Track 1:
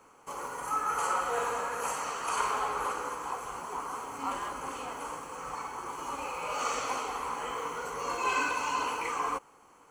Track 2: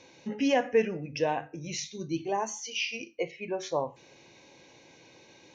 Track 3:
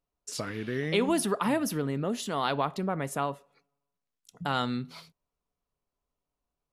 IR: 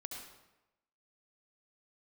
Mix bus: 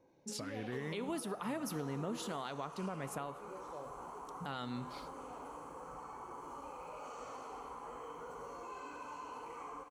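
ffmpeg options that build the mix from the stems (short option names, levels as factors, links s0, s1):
-filter_complex "[0:a]acompressor=threshold=0.0141:ratio=3,adelay=450,volume=0.708,asplit=2[s0][s1];[s1]volume=0.355[s2];[1:a]volume=0.266,asplit=2[s3][s4];[s4]volume=0.282[s5];[2:a]volume=0.422,asplit=2[s6][s7];[s7]volume=0.211[s8];[s0][s3]amix=inputs=2:normalize=0,lowpass=1100,alimiter=level_in=7.94:limit=0.0631:level=0:latency=1,volume=0.126,volume=1[s9];[3:a]atrim=start_sample=2205[s10];[s2][s5][s8]amix=inputs=3:normalize=0[s11];[s11][s10]afir=irnorm=-1:irlink=0[s12];[s6][s9][s12]amix=inputs=3:normalize=0,alimiter=level_in=2:limit=0.0631:level=0:latency=1:release=301,volume=0.501"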